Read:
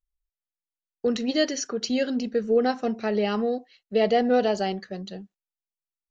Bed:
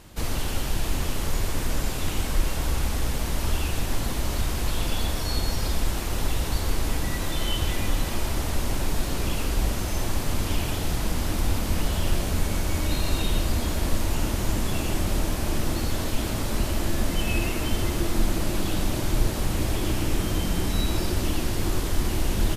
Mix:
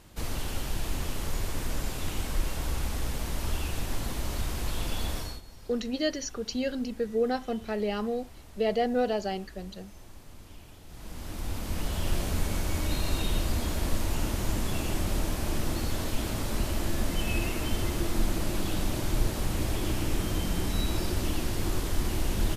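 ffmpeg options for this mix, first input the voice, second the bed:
ffmpeg -i stem1.wav -i stem2.wav -filter_complex "[0:a]adelay=4650,volume=-5.5dB[link_01];[1:a]volume=13.5dB,afade=type=out:start_time=5.17:duration=0.24:silence=0.133352,afade=type=in:start_time=10.87:duration=1.34:silence=0.112202[link_02];[link_01][link_02]amix=inputs=2:normalize=0" out.wav

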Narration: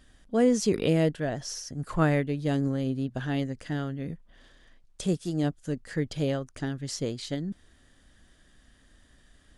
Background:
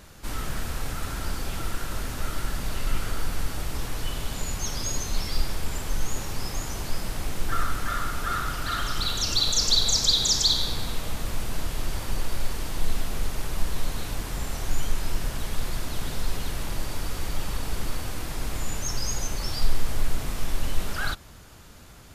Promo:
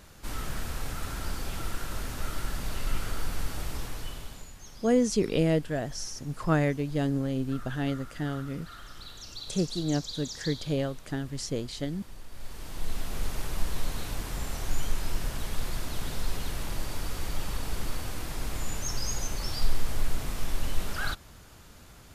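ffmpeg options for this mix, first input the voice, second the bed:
ffmpeg -i stem1.wav -i stem2.wav -filter_complex "[0:a]adelay=4500,volume=-1dB[link_01];[1:a]volume=11.5dB,afade=type=out:start_time=3.68:duration=0.84:silence=0.188365,afade=type=in:start_time=12.3:duration=0.99:silence=0.177828[link_02];[link_01][link_02]amix=inputs=2:normalize=0" out.wav

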